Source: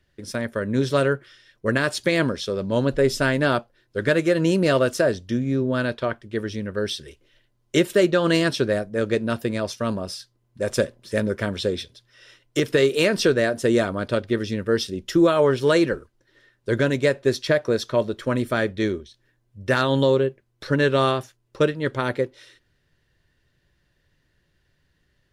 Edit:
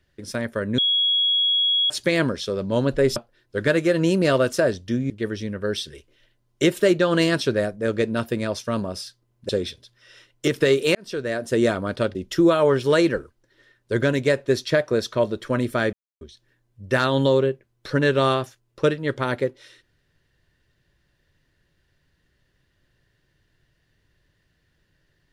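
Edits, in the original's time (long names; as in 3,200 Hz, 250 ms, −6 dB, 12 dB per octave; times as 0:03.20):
0:00.78–0:01.90: beep over 3,330 Hz −17 dBFS
0:03.16–0:03.57: remove
0:05.51–0:06.23: remove
0:10.62–0:11.61: remove
0:13.07–0:13.75: fade in
0:14.27–0:14.92: remove
0:18.70–0:18.98: silence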